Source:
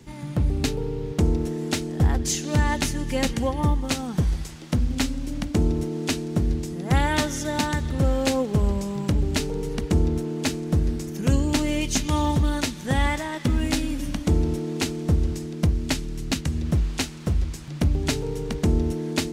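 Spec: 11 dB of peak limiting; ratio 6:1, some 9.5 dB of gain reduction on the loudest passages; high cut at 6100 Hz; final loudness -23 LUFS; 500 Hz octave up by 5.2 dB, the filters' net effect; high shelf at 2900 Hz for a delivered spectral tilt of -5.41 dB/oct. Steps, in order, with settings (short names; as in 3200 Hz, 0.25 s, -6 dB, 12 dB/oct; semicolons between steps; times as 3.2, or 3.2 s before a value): LPF 6100 Hz; bell 500 Hz +6 dB; high shelf 2900 Hz +6 dB; compressor 6:1, threshold -25 dBFS; gain +8 dB; limiter -12.5 dBFS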